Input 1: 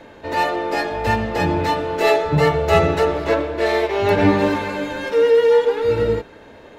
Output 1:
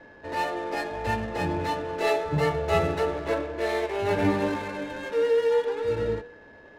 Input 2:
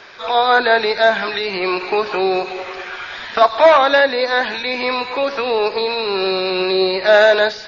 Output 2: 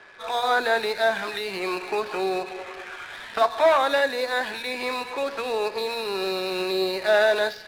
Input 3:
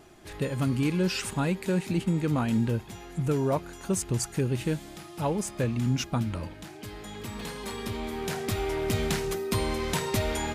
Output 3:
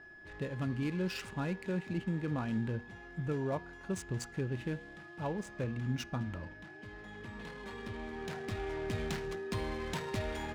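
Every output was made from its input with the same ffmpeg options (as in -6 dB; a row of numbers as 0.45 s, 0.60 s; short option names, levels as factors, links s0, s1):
-af "aeval=exprs='val(0)+0.00891*sin(2*PI*1700*n/s)':c=same,bandreject=f=239.5:t=h:w=4,bandreject=f=479:t=h:w=4,bandreject=f=718.5:t=h:w=4,bandreject=f=958:t=h:w=4,bandreject=f=1197.5:t=h:w=4,bandreject=f=1437:t=h:w=4,bandreject=f=1676.5:t=h:w=4,bandreject=f=1916:t=h:w=4,bandreject=f=2155.5:t=h:w=4,bandreject=f=2395:t=h:w=4,bandreject=f=2634.5:t=h:w=4,bandreject=f=2874:t=h:w=4,bandreject=f=3113.5:t=h:w=4,bandreject=f=3353:t=h:w=4,bandreject=f=3592.5:t=h:w=4,bandreject=f=3832:t=h:w=4,bandreject=f=4071.5:t=h:w=4,bandreject=f=4311:t=h:w=4,bandreject=f=4550.5:t=h:w=4,bandreject=f=4790:t=h:w=4,bandreject=f=5029.5:t=h:w=4,bandreject=f=5269:t=h:w=4,bandreject=f=5508.5:t=h:w=4,bandreject=f=5748:t=h:w=4,bandreject=f=5987.5:t=h:w=4,bandreject=f=6227:t=h:w=4,bandreject=f=6466.5:t=h:w=4,bandreject=f=6706:t=h:w=4,bandreject=f=6945.5:t=h:w=4,bandreject=f=7185:t=h:w=4,bandreject=f=7424.5:t=h:w=4,adynamicsmooth=sensitivity=7:basefreq=1900,volume=0.376"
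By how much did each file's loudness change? -8.5 LU, -8.5 LU, -9.0 LU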